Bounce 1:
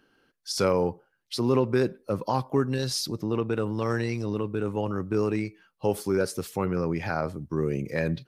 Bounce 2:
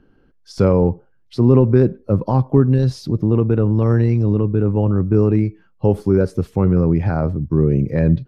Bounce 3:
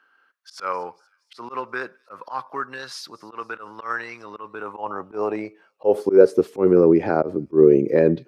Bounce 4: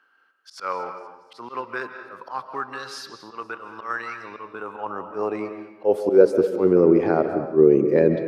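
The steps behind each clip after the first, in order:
tilt EQ -4.5 dB/octave; trim +2.5 dB
feedback echo behind a high-pass 237 ms, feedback 53%, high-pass 4.5 kHz, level -21 dB; high-pass sweep 1.3 kHz -> 370 Hz, 4.24–6.45 s; slow attack 104 ms; trim +1.5 dB
reverberation RT60 1.0 s, pre-delay 105 ms, DRR 7 dB; trim -1.5 dB

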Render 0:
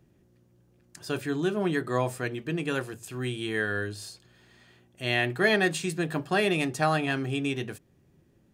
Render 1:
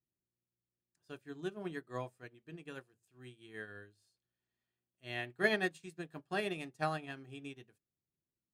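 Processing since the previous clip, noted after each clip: upward expansion 2.5:1, over -38 dBFS; trim -5.5 dB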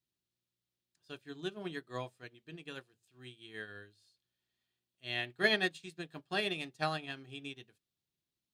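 peaking EQ 3.7 kHz +10 dB 1.1 oct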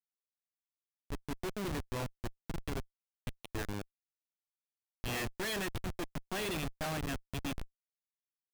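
Schmitt trigger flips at -42 dBFS; trim +5.5 dB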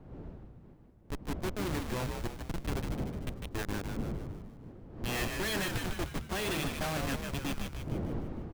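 wind noise 270 Hz -46 dBFS; frequency-shifting echo 151 ms, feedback 52%, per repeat -78 Hz, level -4.5 dB; trim +2 dB

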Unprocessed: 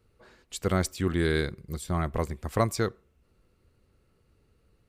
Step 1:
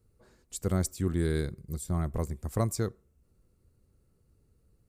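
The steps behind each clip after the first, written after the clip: FFT filter 140 Hz 0 dB, 3 kHz -13 dB, 7.7 kHz +1 dB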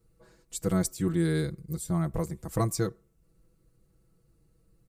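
comb 6.1 ms, depth 90%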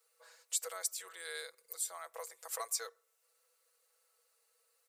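compression 2:1, threshold -39 dBFS, peak gain reduction 10 dB; elliptic high-pass 470 Hz, stop band 40 dB; tilt shelf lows -8.5 dB, about 810 Hz; trim -1 dB

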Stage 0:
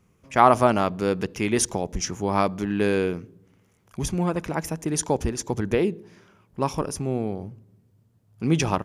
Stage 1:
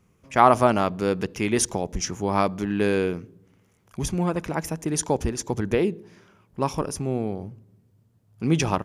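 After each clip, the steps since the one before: no audible change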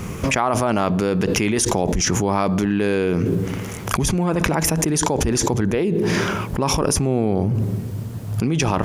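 level flattener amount 100%; trim -6.5 dB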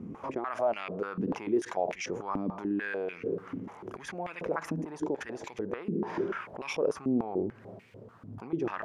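step-sequenced band-pass 6.8 Hz 260–2300 Hz; trim -2 dB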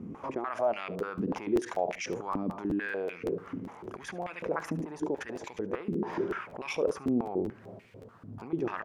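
delay 72 ms -19.5 dB; crackling interface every 0.19 s, samples 512, repeat, from 0.98 s

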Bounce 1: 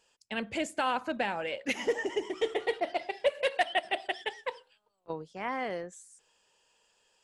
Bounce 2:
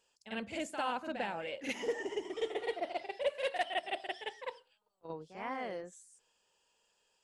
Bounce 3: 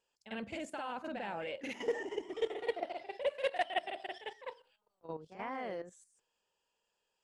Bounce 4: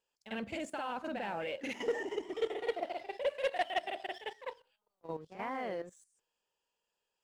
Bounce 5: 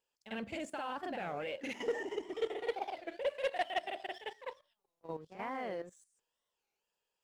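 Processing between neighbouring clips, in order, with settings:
peaking EQ 1.9 kHz -2 dB; reverse echo 49 ms -7.5 dB; trim -6 dB
treble shelf 3.8 kHz -6.5 dB; level held to a coarse grid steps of 11 dB; trim +4 dB
waveshaping leveller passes 1; trim -1.5 dB
warped record 33 1/3 rpm, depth 250 cents; trim -1.5 dB

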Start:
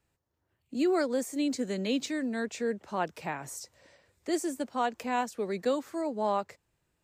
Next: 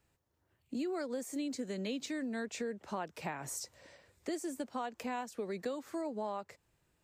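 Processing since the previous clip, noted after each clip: compression, threshold -37 dBFS, peak gain reduction 13 dB; trim +1.5 dB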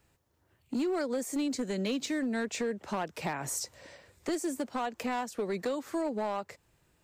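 overload inside the chain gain 33 dB; trim +6.5 dB

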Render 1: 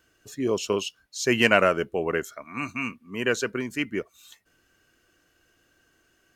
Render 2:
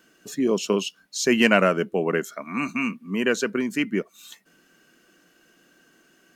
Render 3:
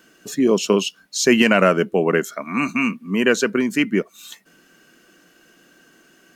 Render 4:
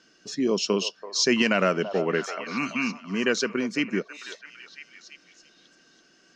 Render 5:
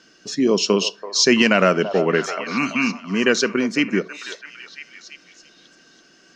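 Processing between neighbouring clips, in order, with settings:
resonant low shelf 130 Hz -12.5 dB, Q 3; in parallel at +2.5 dB: compression, threshold -32 dBFS, peak gain reduction 18.5 dB; on the sum: trim -1.5 dB
loudness maximiser +6.5 dB; trim -1 dB
four-pole ladder low-pass 5.9 kHz, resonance 60%; repeats whose band climbs or falls 333 ms, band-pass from 740 Hz, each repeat 0.7 oct, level -7 dB; trim +3 dB
reverberation RT60 0.35 s, pre-delay 27 ms, DRR 20 dB; trim +6.5 dB

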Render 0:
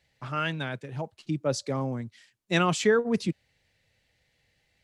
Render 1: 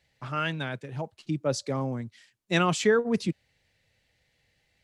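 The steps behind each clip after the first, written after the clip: no audible change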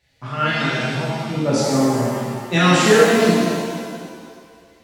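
pitch-shifted reverb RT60 1.9 s, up +7 st, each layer -8 dB, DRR -8.5 dB; trim +1.5 dB

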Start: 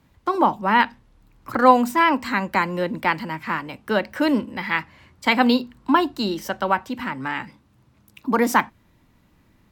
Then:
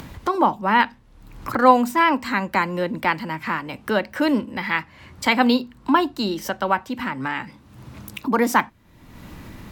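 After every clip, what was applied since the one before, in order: upward compressor, threshold -22 dBFS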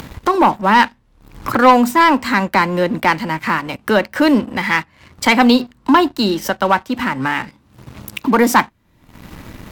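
waveshaping leveller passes 2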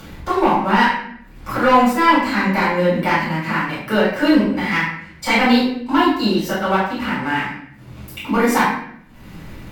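reverberation RT60 0.70 s, pre-delay 6 ms, DRR -10.5 dB; trim -16.5 dB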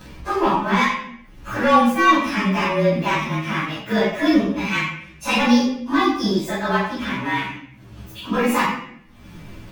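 frequency axis rescaled in octaves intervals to 108%

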